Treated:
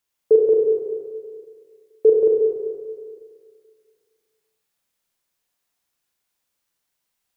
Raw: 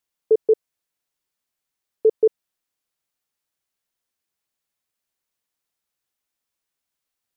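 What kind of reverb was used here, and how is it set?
four-comb reverb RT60 2 s, combs from 32 ms, DRR −1.5 dB
level +2 dB

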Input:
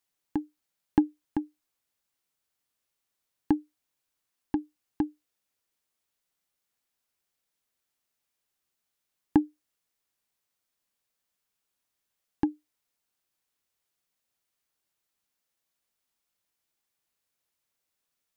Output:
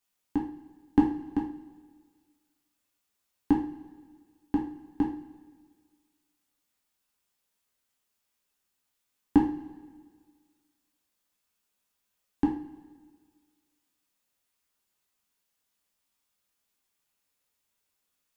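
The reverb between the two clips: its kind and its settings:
coupled-rooms reverb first 0.39 s, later 1.7 s, from −17 dB, DRR −3 dB
level −2 dB

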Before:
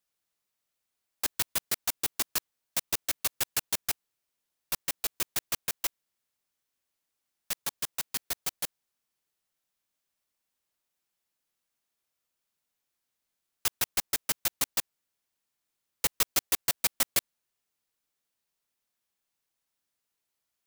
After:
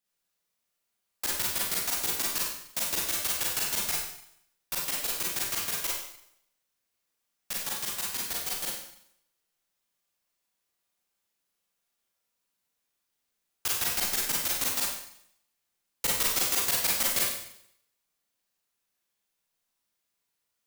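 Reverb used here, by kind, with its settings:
four-comb reverb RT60 0.7 s, combs from 32 ms, DRR −4.5 dB
level −3 dB

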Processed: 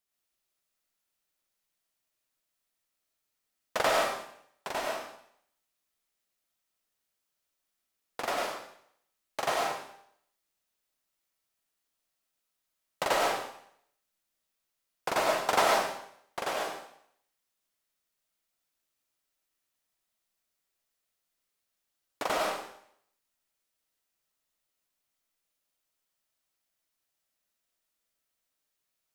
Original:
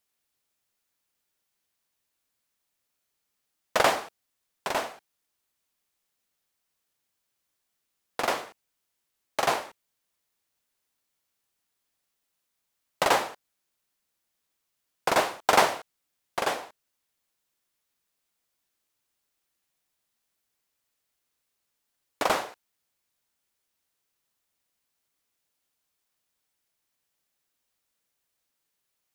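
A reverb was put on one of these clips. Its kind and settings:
comb and all-pass reverb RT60 0.67 s, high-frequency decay 1×, pre-delay 60 ms, DRR −2 dB
level −7 dB

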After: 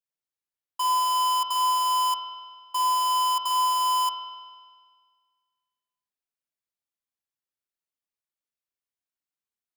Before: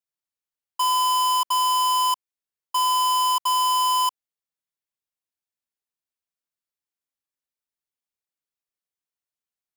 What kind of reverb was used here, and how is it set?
spring reverb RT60 1.7 s, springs 49 ms, chirp 45 ms, DRR 4 dB
level −4.5 dB

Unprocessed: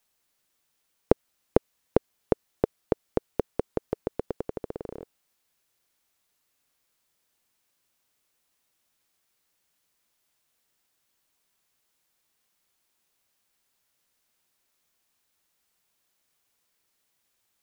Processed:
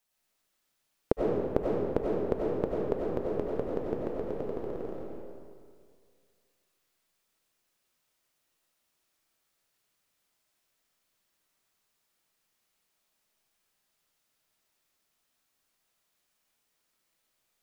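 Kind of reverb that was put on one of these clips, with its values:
comb and all-pass reverb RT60 2.1 s, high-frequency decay 0.75×, pre-delay 55 ms, DRR −4.5 dB
level −6.5 dB

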